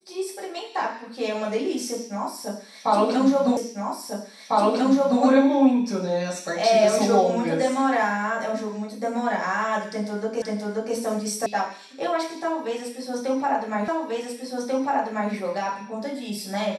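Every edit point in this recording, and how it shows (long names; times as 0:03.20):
0:03.57: the same again, the last 1.65 s
0:10.42: the same again, the last 0.53 s
0:11.46: cut off before it has died away
0:13.88: the same again, the last 1.44 s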